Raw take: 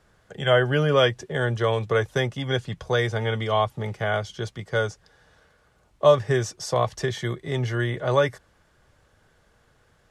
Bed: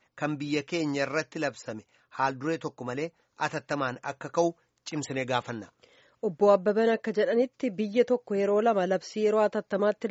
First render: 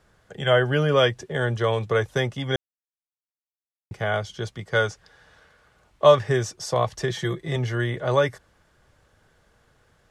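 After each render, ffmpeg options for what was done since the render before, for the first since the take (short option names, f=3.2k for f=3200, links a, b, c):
-filter_complex "[0:a]asettb=1/sr,asplit=3[a][b][c];[a]atrim=end=4.734[d];[b]atrim=start=4.73:end=6.29,asetpts=PTS-STARTPTS,afade=t=in:d=0.004:c=qsin,afade=t=out:st=1.556:d=0.004:c=qsin,equalizer=f=2.1k:w=0.44:g=5[e];[c]atrim=start=6.286[f];[d][e]acrossfade=d=0.004:c1=hsin:c2=qsin[g];[g][f]acrossfade=d=0.004:c1=qsin:c2=hsin,asettb=1/sr,asplit=3[h][i][j];[h]atrim=end=7.094[k];[i]atrim=start=7.09:end=7.56,asetpts=PTS-STARTPTS,afade=t=in:d=0.004:c=qsin,afade=t=out:st=0.466:d=0.004:c=qsin,aecho=1:1:5.9:0.65,atrim=end_sample=20727[l];[j]atrim=start=7.556[m];[k][l]acrossfade=d=0.004:c1=hsin:c2=qsin[n];[n][m]acrossfade=d=0.004:c1=qsin:c2=hsin,asplit=3[o][p][q];[o]atrim=end=2.56,asetpts=PTS-STARTPTS,afade=t=out:st=2.556:d=0.004:c=hsin[r];[p]atrim=start=2.56:end=3.91,asetpts=PTS-STARTPTS,volume=0[s];[q]atrim=start=3.91,asetpts=PTS-STARTPTS,afade=t=in:d=0.004:c=hsin[t];[r][s][t]concat=n=3:v=0:a=1"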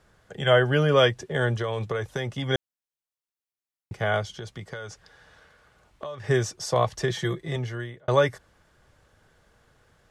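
-filter_complex "[0:a]asettb=1/sr,asplit=3[a][b][c];[a]atrim=end=1.594[d];[b]atrim=start=1.59:end=2.43,asetpts=PTS-STARTPTS,afade=t=in:d=0.004:c=qsin,afade=t=out:st=0.836:d=0.004:c=qsin,acompressor=threshold=-24dB:ratio=6:attack=3.2:release=140:knee=1:detection=peak[e];[c]atrim=start=2.426[f];[d][e]acrossfade=d=0.004:c1=hsin:c2=qsin[g];[g][f]acrossfade=d=0.004:c1=qsin:c2=hsin,asettb=1/sr,asplit=3[h][i][j];[h]atrim=end=4.304[k];[i]atrim=start=4.3:end=6.24,asetpts=PTS-STARTPTS,afade=t=in:d=0.004:c=qsin,afade=t=out:st=1.936:d=0.004:c=qsin,acompressor=threshold=-32dB:ratio=12:attack=3.2:release=140:knee=1:detection=peak[l];[j]atrim=start=6.236[m];[k][l]acrossfade=d=0.004:c1=hsin:c2=qsin[n];[n][m]acrossfade=d=0.004:c1=qsin:c2=hsin,asplit=2[o][p];[o]atrim=end=8.08,asetpts=PTS-STARTPTS,afade=t=out:st=6.95:d=1.13:c=qsin[q];[p]atrim=start=8.08,asetpts=PTS-STARTPTS,afade=t=in:d=0.004:c=hsin[r];[q][r]concat=n=2:v=0:a=1"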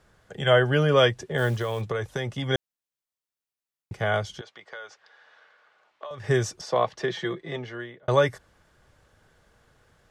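-filter_complex "[0:a]asplit=3[a][b][c];[a]afade=t=out:st=1.37:d=0.02[d];[b]acrusher=bits=6:mode=log:mix=0:aa=0.000001,afade=t=in:st=1.37:d=0.02,afade=t=out:st=1.8:d=0.02[e];[c]afade=t=in:st=1.8:d=0.02[f];[d][e][f]amix=inputs=3:normalize=0,asettb=1/sr,asplit=3[g][h][i];[g]atrim=end=4.414[j];[h]atrim=start=4.41:end=6.11,asetpts=PTS-STARTPTS,afade=t=in:d=0.004:c=qsin,afade=t=out:st=1.696:d=0.004:c=qsin,highpass=620,lowpass=3.9k[k];[i]atrim=start=6.106[l];[j][k]acrossfade=d=0.004:c1=hsin:c2=qsin[m];[m][l]acrossfade=d=0.004:c1=qsin:c2=hsin,asettb=1/sr,asplit=3[n][o][p];[n]atrim=end=6.614[q];[o]atrim=start=6.61:end=8.03,asetpts=PTS-STARTPTS,afade=t=in:d=0.004:c=qsin,afade=t=out:st=1.416:d=0.004:c=qsin,acrossover=split=170 4900:gain=0.112 1 0.141[r][s][t];[r][s][t]amix=inputs=3:normalize=0[u];[p]atrim=start=8.026[v];[q][u]acrossfade=d=0.004:c1=hsin:c2=qsin[w];[w][v]acrossfade=d=0.004:c1=qsin:c2=hsin"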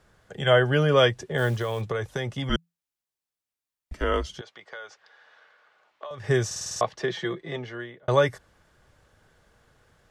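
-filter_complex "[0:a]asettb=1/sr,asplit=3[a][b][c];[a]atrim=end=2.494[d];[b]atrim=start=2.49:end=4.29,asetpts=PTS-STARTPTS,afade=t=in:d=0.004:c=qsin,afade=t=out:st=1.796:d=0.004:c=qsin,afreqshift=-170[e];[c]atrim=start=4.286[f];[d][e]acrossfade=d=0.004:c1=hsin:c2=qsin[g];[g][f]acrossfade=d=0.004:c1=qsin:c2=hsin,asplit=8[h][i][j][k][l][m][n][o];[h]atrim=end=6.512[p];[i]atrim=start=6.458:end=6.512[q];[j]atrim=start=6.458:end=6.512[r];[k]atrim=start=6.458:end=6.512[s];[l]atrim=start=6.458:end=6.512[t];[m]atrim=start=6.458:end=6.512[u];[n]atrim=start=6.458:end=6.512[v];[o]atrim=start=6.808[w];[p][q]acrossfade=d=0.004:c1=hsin:c2=hsin[x];[x][r]acrossfade=d=0.004:c1=hsin:c2=hsin[y];[y][s]acrossfade=d=0.004:c1=hsin:c2=hsin[z];[z][t]acrossfade=d=0.004:c1=hsin:c2=hsin[aa];[aa][u]acrossfade=d=0.004:c1=hsin:c2=hsin[ab];[ab][v]acrossfade=d=0.004:c1=hsin:c2=hsin[ac];[ac][w]acrossfade=d=0.004:c1=hsin:c2=hsin"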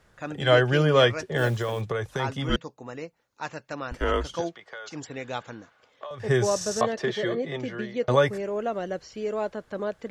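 -filter_complex "[1:a]volume=-5dB[a];[0:a][a]amix=inputs=2:normalize=0"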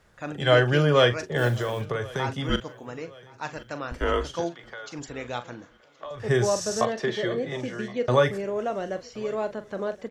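-filter_complex "[0:a]asplit=2[a][b];[b]adelay=41,volume=-11.5dB[c];[a][c]amix=inputs=2:normalize=0,aecho=1:1:1071|2142|3213:0.0668|0.0321|0.0154"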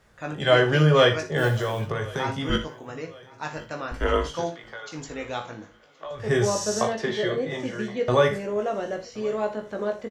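-filter_complex "[0:a]asplit=2[a][b];[b]adelay=19,volume=-5dB[c];[a][c]amix=inputs=2:normalize=0,aecho=1:1:59|80:0.237|0.133"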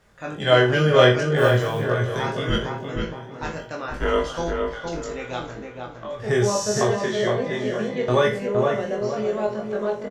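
-filter_complex "[0:a]asplit=2[a][b];[b]adelay=24,volume=-5dB[c];[a][c]amix=inputs=2:normalize=0,asplit=2[d][e];[e]adelay=464,lowpass=f=1.6k:p=1,volume=-3.5dB,asplit=2[f][g];[g]adelay=464,lowpass=f=1.6k:p=1,volume=0.41,asplit=2[h][i];[i]adelay=464,lowpass=f=1.6k:p=1,volume=0.41,asplit=2[j][k];[k]adelay=464,lowpass=f=1.6k:p=1,volume=0.41,asplit=2[l][m];[m]adelay=464,lowpass=f=1.6k:p=1,volume=0.41[n];[d][f][h][j][l][n]amix=inputs=6:normalize=0"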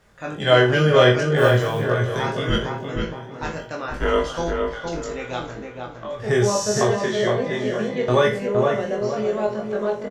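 -af "volume=1.5dB,alimiter=limit=-3dB:level=0:latency=1"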